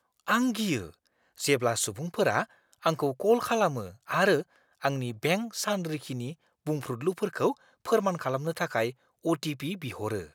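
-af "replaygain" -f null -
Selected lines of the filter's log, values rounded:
track_gain = +7.8 dB
track_peak = 0.229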